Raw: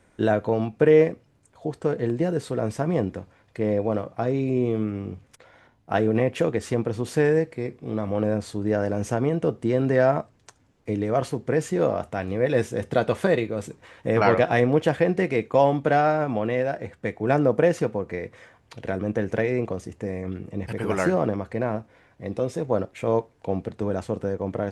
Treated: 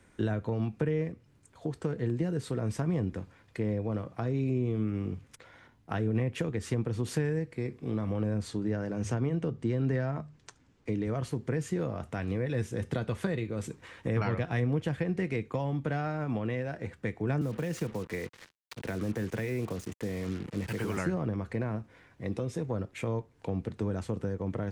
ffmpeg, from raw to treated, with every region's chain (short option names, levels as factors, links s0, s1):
-filter_complex "[0:a]asettb=1/sr,asplit=3[s0][s1][s2];[s0]atrim=end=8.484[s3];[s1]atrim=start=8.48:end=11.07,asetpts=PTS-STARTPTS,afade=t=in:d=0.004:c=qsin,afade=t=out:st=2.586:d=0.004:c=qsin,lowpass=7700,bandreject=f=50:t=h:w=6,bandreject=f=100:t=h:w=6,bandreject=f=150:t=h:w=6[s4];[s2]atrim=start=11.066[s5];[s3][s4]acrossfade=d=0.004:c1=hsin:c2=qsin[s6];[s6][s5]acrossfade=d=0.004:c1=qsin:c2=hsin,asettb=1/sr,asplit=3[s7][s8][s9];[s7]atrim=end=17.414[s10];[s8]atrim=start=17.41:end=20.97,asetpts=PTS-STARTPTS,afade=t=in:d=0.004:c=qsin,afade=t=out:st=3.556:d=0.004:c=qsin,lowshelf=f=150:g=-4,acrossover=split=210|3000[s11][s12][s13];[s12]acompressor=threshold=0.0631:ratio=5:attack=3.2:release=140:knee=2.83:detection=peak[s14];[s11][s14][s13]amix=inputs=3:normalize=0,acrusher=bits=6:mix=0:aa=0.5[s15];[s9]atrim=start=20.966[s16];[s10][s15]acrossfade=d=0.004:c1=hsin:c2=qsin[s17];[s17][s16]acrossfade=d=0.004:c1=qsin:c2=hsin,acrossover=split=160[s18][s19];[s19]acompressor=threshold=0.0316:ratio=4[s20];[s18][s20]amix=inputs=2:normalize=0,equalizer=f=650:w=1.5:g=-6.5"